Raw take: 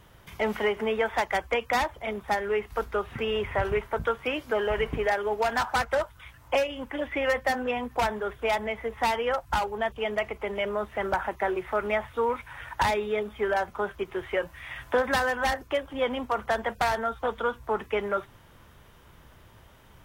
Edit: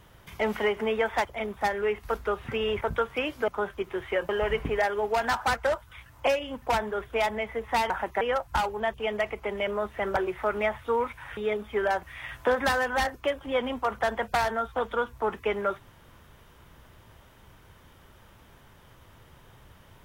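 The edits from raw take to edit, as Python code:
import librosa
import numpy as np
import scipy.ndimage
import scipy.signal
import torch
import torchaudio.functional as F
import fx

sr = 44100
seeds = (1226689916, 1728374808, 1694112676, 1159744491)

y = fx.edit(x, sr, fx.cut(start_s=1.25, length_s=0.67),
    fx.cut(start_s=3.48, length_s=0.42),
    fx.cut(start_s=6.9, length_s=1.01),
    fx.move(start_s=11.15, length_s=0.31, to_s=9.19),
    fx.cut(start_s=12.66, length_s=0.37),
    fx.move(start_s=13.69, length_s=0.81, to_s=4.57), tone=tone)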